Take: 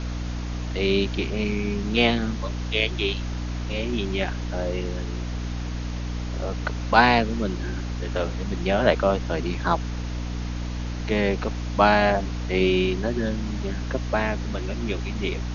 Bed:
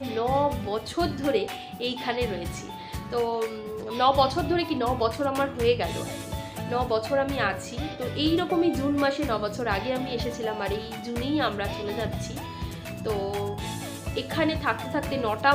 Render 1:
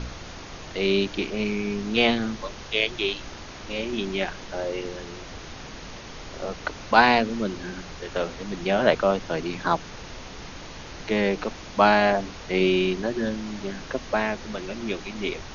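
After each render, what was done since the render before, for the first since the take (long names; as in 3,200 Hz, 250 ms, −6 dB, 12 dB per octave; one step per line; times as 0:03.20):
hum removal 60 Hz, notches 5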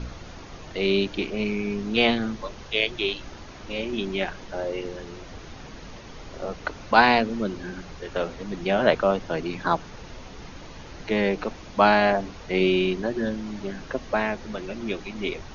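broadband denoise 6 dB, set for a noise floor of −40 dBFS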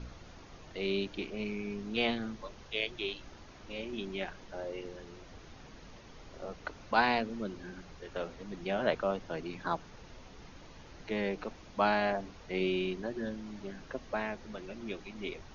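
level −10.5 dB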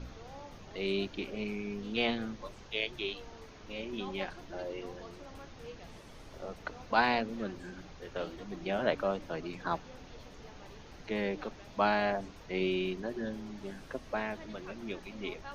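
mix in bed −26 dB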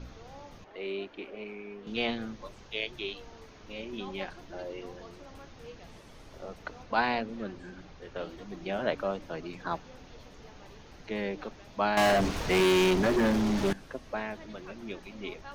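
0:00.64–0:01.87: three-way crossover with the lows and the highs turned down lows −16 dB, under 290 Hz, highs −16 dB, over 2,900 Hz
0:06.83–0:08.29: high-frequency loss of the air 55 metres
0:11.97–0:13.73: leveller curve on the samples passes 5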